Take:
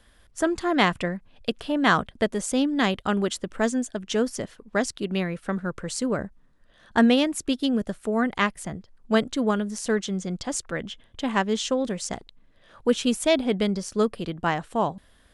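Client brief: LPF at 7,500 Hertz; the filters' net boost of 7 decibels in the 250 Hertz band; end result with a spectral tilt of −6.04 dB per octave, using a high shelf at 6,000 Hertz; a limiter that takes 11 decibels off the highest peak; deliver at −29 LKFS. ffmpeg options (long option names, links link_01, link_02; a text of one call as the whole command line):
ffmpeg -i in.wav -af "lowpass=7500,equalizer=frequency=250:width_type=o:gain=8,highshelf=frequency=6000:gain=-5,volume=-4.5dB,alimiter=limit=-18dB:level=0:latency=1" out.wav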